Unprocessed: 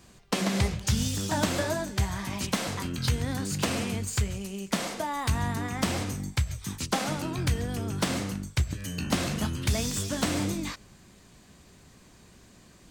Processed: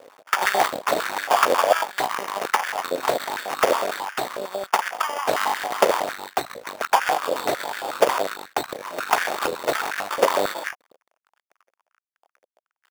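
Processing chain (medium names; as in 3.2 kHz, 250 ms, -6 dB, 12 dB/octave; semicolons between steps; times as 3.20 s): tilt EQ -2 dB/octave; in parallel at -2 dB: compression 6:1, threshold -33 dBFS, peak gain reduction 18 dB; on the sum: vibrato 0.42 Hz 27 cents; on a send: reverse echo 1037 ms -15.5 dB; on the sum: crossover distortion -37 dBFS; Chebyshev shaper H 6 -7 dB, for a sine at -7 dBFS; sample-and-hold 11×; step-sequenced high-pass 11 Hz 540–1600 Hz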